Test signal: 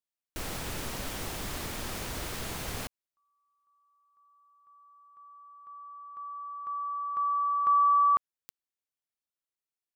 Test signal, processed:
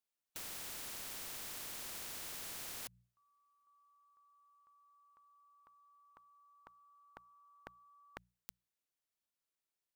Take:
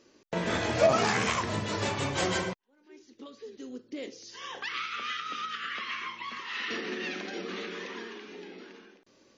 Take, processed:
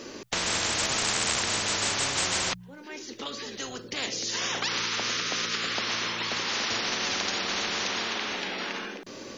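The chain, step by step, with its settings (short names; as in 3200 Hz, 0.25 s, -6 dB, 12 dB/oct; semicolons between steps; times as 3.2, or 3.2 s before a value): notches 60/120/180 Hz; spectral compressor 10:1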